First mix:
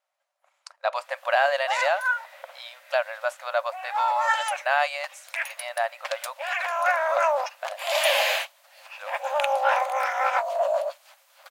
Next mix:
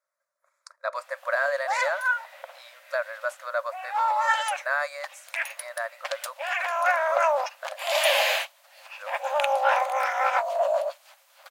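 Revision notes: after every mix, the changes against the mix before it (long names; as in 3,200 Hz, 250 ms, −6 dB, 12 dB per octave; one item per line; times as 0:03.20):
speech: add phaser with its sweep stopped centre 790 Hz, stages 6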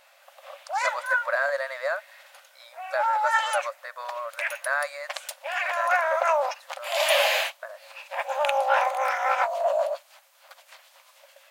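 background: entry −0.95 s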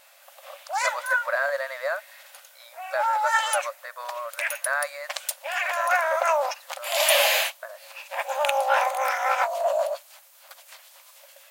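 background: add high-shelf EQ 6,100 Hz +11.5 dB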